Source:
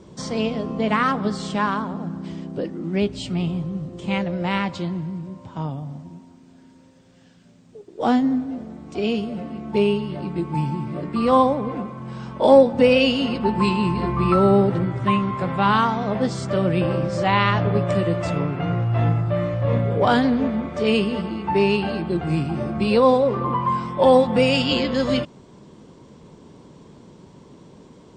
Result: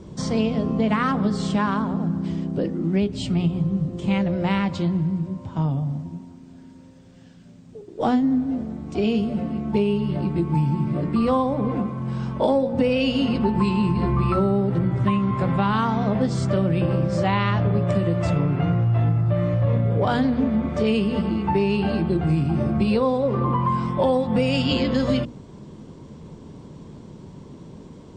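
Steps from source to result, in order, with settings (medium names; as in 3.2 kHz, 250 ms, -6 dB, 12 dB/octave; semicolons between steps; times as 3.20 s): bass shelf 260 Hz +10 dB; hum notches 60/120/180/240/300/360/420/480/540 Hz; compression, threshold -17 dBFS, peak gain reduction 11 dB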